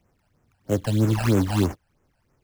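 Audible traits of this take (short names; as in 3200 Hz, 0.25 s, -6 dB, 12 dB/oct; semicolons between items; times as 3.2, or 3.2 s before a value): aliases and images of a low sample rate 3700 Hz, jitter 20%; phasing stages 12, 3.1 Hz, lowest notch 340–4300 Hz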